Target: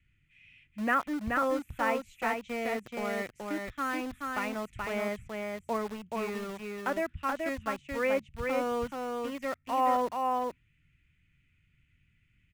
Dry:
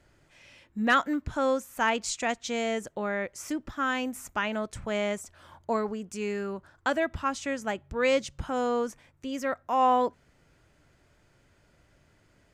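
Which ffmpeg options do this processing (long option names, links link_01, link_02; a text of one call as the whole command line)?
ffmpeg -i in.wav -filter_complex "[0:a]highshelf=frequency=3500:width_type=q:width=3:gain=-12,bandreject=frequency=1600:width=15,acrossover=split=220|2000[link_01][link_02][link_03];[link_02]aeval=exprs='val(0)*gte(abs(val(0)),0.0168)':channel_layout=same[link_04];[link_03]acompressor=threshold=-47dB:ratio=6[link_05];[link_01][link_04][link_05]amix=inputs=3:normalize=0,aecho=1:1:428:0.668,volume=-4.5dB" out.wav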